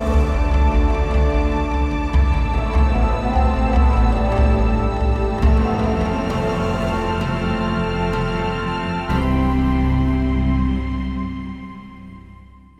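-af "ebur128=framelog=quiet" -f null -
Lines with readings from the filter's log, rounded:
Integrated loudness:
  I:         -19.3 LUFS
  Threshold: -29.7 LUFS
Loudness range:
  LRA:         3.0 LU
  Threshold: -39.4 LUFS
  LRA low:   -21.1 LUFS
  LRA high:  -18.1 LUFS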